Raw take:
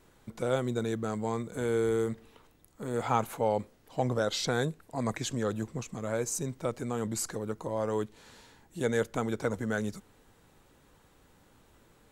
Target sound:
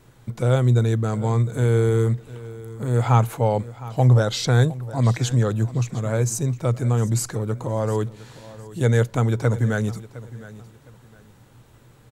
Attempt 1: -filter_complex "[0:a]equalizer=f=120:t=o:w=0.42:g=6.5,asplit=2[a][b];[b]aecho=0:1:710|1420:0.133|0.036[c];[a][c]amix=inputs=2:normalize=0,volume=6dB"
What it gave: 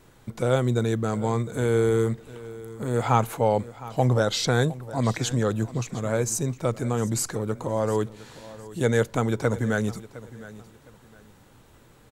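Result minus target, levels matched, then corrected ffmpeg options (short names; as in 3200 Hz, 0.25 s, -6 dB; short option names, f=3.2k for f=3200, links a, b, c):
125 Hz band -4.0 dB
-filter_complex "[0:a]equalizer=f=120:t=o:w=0.42:g=16,asplit=2[a][b];[b]aecho=0:1:710|1420:0.133|0.036[c];[a][c]amix=inputs=2:normalize=0,volume=6dB"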